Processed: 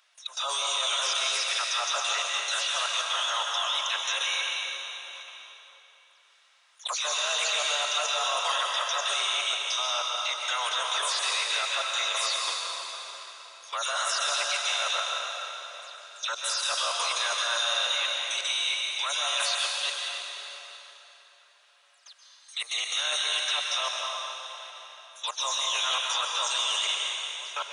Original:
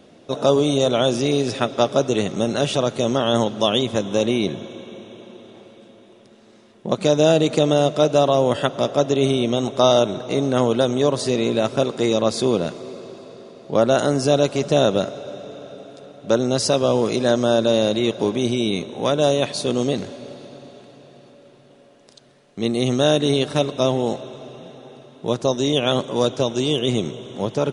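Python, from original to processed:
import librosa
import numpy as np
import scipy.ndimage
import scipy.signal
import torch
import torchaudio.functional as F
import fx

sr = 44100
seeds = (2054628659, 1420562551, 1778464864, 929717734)

y = fx.spec_delay(x, sr, highs='early', ms=143)
y = scipy.signal.sosfilt(scipy.signal.cheby2(4, 70, 250.0, 'highpass', fs=sr, output='sos'), y)
y = fx.level_steps(y, sr, step_db=18)
y = fx.rev_plate(y, sr, seeds[0], rt60_s=3.1, hf_ratio=0.85, predelay_ms=115, drr_db=-1.0)
y = y * librosa.db_to_amplitude(5.5)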